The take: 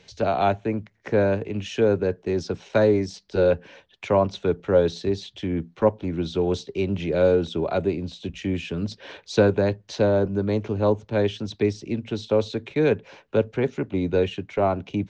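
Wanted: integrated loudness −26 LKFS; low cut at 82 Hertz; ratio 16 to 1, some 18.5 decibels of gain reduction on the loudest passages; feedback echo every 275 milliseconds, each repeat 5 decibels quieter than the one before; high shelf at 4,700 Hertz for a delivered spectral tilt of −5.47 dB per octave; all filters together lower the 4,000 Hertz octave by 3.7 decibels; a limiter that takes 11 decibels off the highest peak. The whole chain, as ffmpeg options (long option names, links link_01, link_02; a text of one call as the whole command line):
ffmpeg -i in.wav -af "highpass=82,equalizer=frequency=4000:width_type=o:gain=-6.5,highshelf=frequency=4700:gain=4,acompressor=threshold=-32dB:ratio=16,alimiter=level_in=6.5dB:limit=-24dB:level=0:latency=1,volume=-6.5dB,aecho=1:1:275|550|825|1100|1375|1650|1925:0.562|0.315|0.176|0.0988|0.0553|0.031|0.0173,volume=13dB" out.wav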